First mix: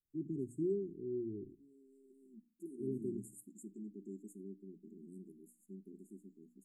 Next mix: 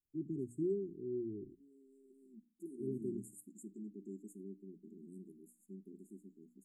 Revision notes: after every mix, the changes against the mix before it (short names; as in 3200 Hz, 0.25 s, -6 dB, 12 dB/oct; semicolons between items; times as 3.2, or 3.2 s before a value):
first voice: send -10.5 dB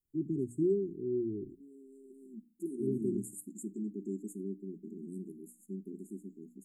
first voice +6.5 dB; second voice +9.5 dB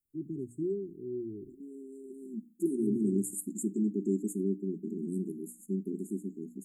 first voice -4.0 dB; second voice +8.5 dB